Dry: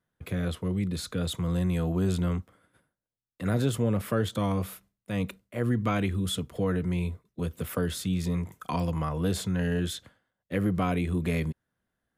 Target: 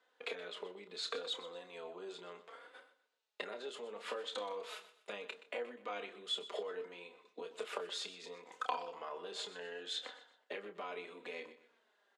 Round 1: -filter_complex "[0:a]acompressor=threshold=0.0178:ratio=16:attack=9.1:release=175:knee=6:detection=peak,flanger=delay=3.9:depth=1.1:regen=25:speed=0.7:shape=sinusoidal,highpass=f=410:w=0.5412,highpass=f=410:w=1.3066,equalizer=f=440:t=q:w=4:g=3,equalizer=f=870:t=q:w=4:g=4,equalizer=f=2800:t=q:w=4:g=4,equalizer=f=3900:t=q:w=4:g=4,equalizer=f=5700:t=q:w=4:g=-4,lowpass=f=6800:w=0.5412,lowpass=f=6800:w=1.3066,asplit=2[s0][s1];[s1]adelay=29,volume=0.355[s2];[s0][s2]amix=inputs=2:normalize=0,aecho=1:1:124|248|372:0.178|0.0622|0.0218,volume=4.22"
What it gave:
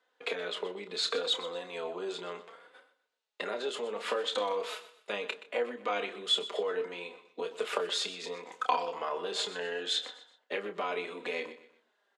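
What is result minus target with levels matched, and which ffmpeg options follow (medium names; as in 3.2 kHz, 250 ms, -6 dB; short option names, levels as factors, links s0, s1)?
compression: peak gain reduction -10.5 dB
-filter_complex "[0:a]acompressor=threshold=0.00501:ratio=16:attack=9.1:release=175:knee=6:detection=peak,flanger=delay=3.9:depth=1.1:regen=25:speed=0.7:shape=sinusoidal,highpass=f=410:w=0.5412,highpass=f=410:w=1.3066,equalizer=f=440:t=q:w=4:g=3,equalizer=f=870:t=q:w=4:g=4,equalizer=f=2800:t=q:w=4:g=4,equalizer=f=3900:t=q:w=4:g=4,equalizer=f=5700:t=q:w=4:g=-4,lowpass=f=6800:w=0.5412,lowpass=f=6800:w=1.3066,asplit=2[s0][s1];[s1]adelay=29,volume=0.355[s2];[s0][s2]amix=inputs=2:normalize=0,aecho=1:1:124|248|372:0.178|0.0622|0.0218,volume=4.22"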